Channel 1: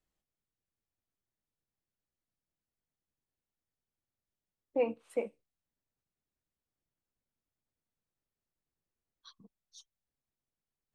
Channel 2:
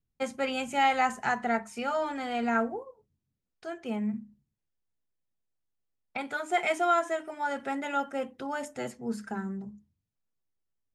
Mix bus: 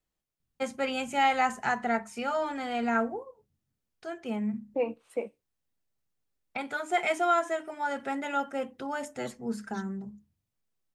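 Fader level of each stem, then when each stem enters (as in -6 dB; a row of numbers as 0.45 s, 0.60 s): +1.0 dB, 0.0 dB; 0.00 s, 0.40 s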